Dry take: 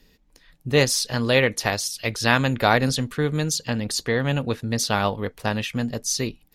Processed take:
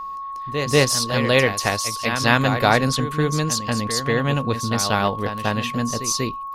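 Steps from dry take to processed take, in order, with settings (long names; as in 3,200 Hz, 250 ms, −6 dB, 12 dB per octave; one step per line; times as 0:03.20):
backwards echo 190 ms −8.5 dB
steady tone 1,100 Hz −30 dBFS
level +1.5 dB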